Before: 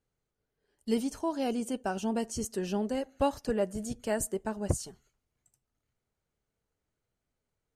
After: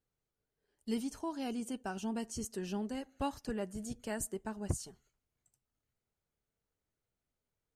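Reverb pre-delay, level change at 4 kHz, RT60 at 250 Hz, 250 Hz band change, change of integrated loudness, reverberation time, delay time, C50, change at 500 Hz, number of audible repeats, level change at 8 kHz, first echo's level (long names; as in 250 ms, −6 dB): no reverb audible, −5.0 dB, no reverb audible, −5.5 dB, −7.0 dB, no reverb audible, no echo audible, no reverb audible, −10.0 dB, no echo audible, −5.0 dB, no echo audible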